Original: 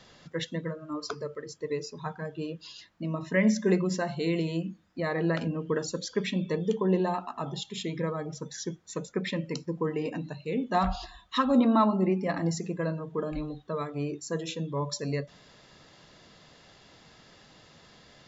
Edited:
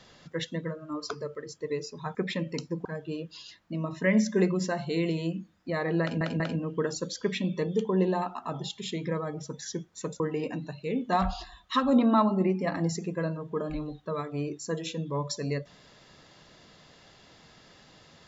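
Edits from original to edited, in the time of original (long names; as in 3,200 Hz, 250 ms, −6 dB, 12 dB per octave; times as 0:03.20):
0:05.32: stutter 0.19 s, 3 plays
0:09.12–0:09.82: move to 0:02.15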